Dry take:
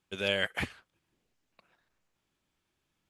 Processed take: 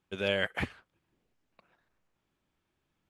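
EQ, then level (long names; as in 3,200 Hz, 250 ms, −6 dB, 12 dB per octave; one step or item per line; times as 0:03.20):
high-shelf EQ 3,000 Hz −9.5 dB
+2.0 dB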